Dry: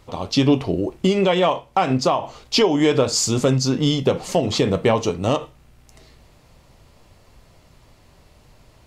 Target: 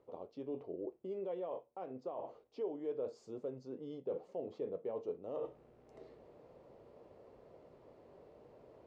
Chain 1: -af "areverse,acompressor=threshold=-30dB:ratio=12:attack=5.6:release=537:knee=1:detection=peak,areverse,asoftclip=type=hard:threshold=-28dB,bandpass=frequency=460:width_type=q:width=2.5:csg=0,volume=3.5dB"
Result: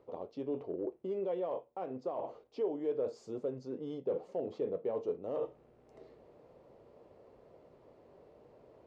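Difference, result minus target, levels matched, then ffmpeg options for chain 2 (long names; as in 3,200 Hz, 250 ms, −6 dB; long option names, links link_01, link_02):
downward compressor: peak gain reduction −5.5 dB
-af "areverse,acompressor=threshold=-36dB:ratio=12:attack=5.6:release=537:knee=1:detection=peak,areverse,asoftclip=type=hard:threshold=-28dB,bandpass=frequency=460:width_type=q:width=2.5:csg=0,volume=3.5dB"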